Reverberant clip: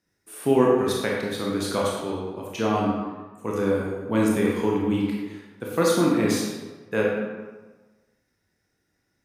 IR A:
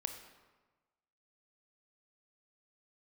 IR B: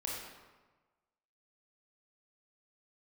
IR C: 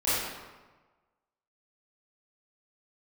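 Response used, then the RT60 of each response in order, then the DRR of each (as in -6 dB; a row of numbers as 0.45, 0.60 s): B; 1.3, 1.3, 1.3 s; 6.5, -3.5, -13.5 dB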